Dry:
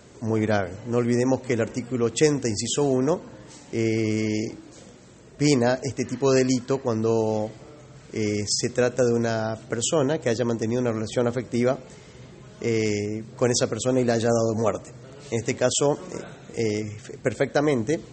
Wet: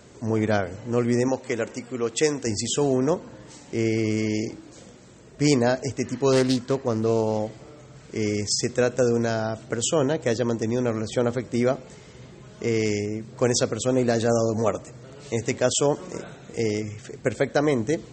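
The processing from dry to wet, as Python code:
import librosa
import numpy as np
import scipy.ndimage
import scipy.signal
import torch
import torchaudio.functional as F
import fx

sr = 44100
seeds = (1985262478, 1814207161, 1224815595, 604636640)

y = fx.low_shelf(x, sr, hz=230.0, db=-11.0, at=(1.28, 2.47))
y = fx.doppler_dist(y, sr, depth_ms=0.23, at=(6.32, 7.39))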